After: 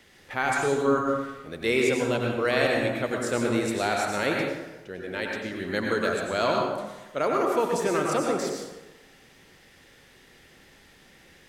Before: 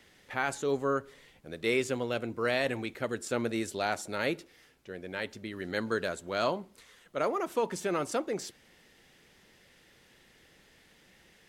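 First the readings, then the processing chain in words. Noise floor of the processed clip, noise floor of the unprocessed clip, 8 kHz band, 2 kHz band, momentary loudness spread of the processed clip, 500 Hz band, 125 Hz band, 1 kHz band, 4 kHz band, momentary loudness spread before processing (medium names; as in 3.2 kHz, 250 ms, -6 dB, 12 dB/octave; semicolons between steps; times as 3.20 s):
-55 dBFS, -62 dBFS, +5.5 dB, +6.5 dB, 11 LU, +6.5 dB, +7.0 dB, +7.0 dB, +5.5 dB, 10 LU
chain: plate-style reverb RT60 1.1 s, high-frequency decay 0.6×, pre-delay 80 ms, DRR -0.5 dB; trim +3.5 dB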